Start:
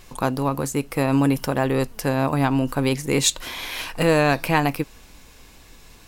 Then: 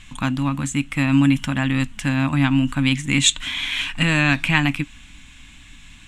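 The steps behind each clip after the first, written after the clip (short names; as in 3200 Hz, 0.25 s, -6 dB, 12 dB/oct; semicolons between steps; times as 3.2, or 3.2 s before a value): EQ curve 290 Hz 0 dB, 410 Hz -27 dB, 580 Hz -15 dB, 2000 Hz +3 dB, 3400 Hz +6 dB, 4800 Hz -11 dB, 7600 Hz +1 dB, 15000 Hz -26 dB; gain +3.5 dB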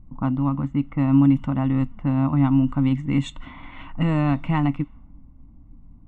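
low-pass opened by the level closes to 440 Hz, open at -14.5 dBFS; polynomial smoothing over 65 samples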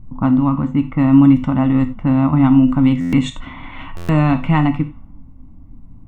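on a send at -8 dB: reverb, pre-delay 8 ms; on the sum: stuck buffer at 3/3.96, samples 512, times 10; gain +7 dB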